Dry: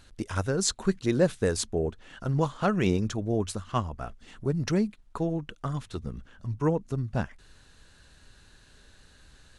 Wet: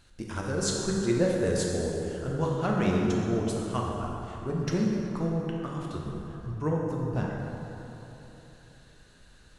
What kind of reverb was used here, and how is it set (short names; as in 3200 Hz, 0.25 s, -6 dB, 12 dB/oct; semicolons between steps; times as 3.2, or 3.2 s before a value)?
plate-style reverb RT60 3.4 s, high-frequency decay 0.55×, DRR -2.5 dB; gain -5 dB